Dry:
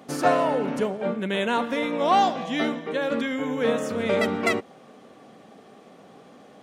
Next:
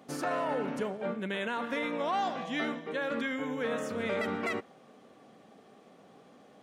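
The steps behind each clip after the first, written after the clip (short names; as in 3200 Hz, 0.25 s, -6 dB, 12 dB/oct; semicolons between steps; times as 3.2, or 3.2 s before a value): dynamic EQ 1600 Hz, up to +6 dB, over -37 dBFS, Q 1.1; limiter -15.5 dBFS, peak gain reduction 9 dB; gain -7.5 dB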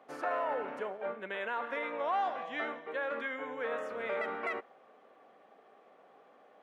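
three-band isolator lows -20 dB, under 410 Hz, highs -17 dB, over 2600 Hz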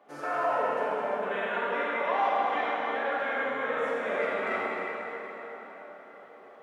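flange 1.8 Hz, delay 2.9 ms, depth 8.7 ms, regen +59%; plate-style reverb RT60 4.6 s, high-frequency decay 0.75×, DRR -8 dB; gain +2.5 dB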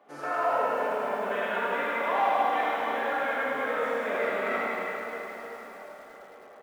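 on a send: feedback echo 77 ms, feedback 25%, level -7.5 dB; on the sum: lo-fi delay 0.104 s, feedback 80%, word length 8-bit, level -12.5 dB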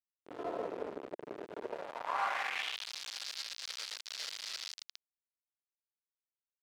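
bit-crush 4-bit; band-pass sweep 380 Hz -> 4700 Hz, 1.59–2.92; gain -3.5 dB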